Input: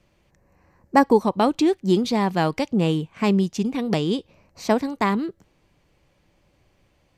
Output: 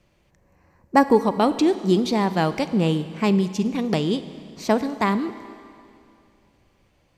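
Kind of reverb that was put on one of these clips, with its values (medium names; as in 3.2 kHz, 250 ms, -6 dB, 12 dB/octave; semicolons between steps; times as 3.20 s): Schroeder reverb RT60 2.5 s, combs from 33 ms, DRR 12.5 dB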